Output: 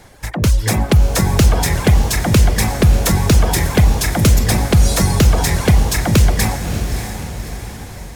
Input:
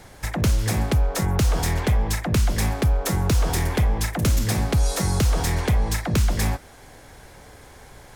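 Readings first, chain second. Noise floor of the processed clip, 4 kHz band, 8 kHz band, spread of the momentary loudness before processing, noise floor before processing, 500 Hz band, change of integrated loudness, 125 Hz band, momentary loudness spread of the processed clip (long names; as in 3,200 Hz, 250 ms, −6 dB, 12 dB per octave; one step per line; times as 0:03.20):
−31 dBFS, +9.0 dB, +9.0 dB, 2 LU, −47 dBFS, +8.0 dB, +8.0 dB, +8.0 dB, 13 LU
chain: notch filter 1,300 Hz, Q 30
automatic gain control gain up to 8 dB
reverb reduction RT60 1.9 s
on a send: feedback delay with all-pass diffusion 616 ms, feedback 50%, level −8 dB
on the sum: level +2 dB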